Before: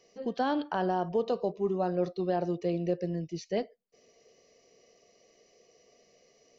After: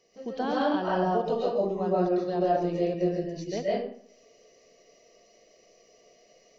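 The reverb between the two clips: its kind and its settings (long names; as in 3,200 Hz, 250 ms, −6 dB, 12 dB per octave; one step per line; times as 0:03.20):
comb and all-pass reverb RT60 0.58 s, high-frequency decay 0.7×, pre-delay 95 ms, DRR −6.5 dB
level −3 dB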